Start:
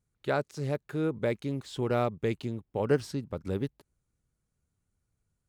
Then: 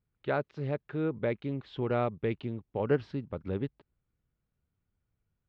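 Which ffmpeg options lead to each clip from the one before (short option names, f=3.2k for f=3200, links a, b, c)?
-af "lowpass=f=3.4k:w=0.5412,lowpass=f=3.4k:w=1.3066,volume=-1.5dB"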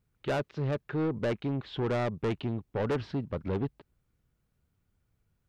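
-af "asoftclip=type=tanh:threshold=-32dB,volume=6.5dB"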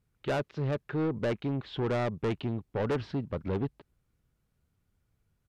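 -af "aresample=32000,aresample=44100"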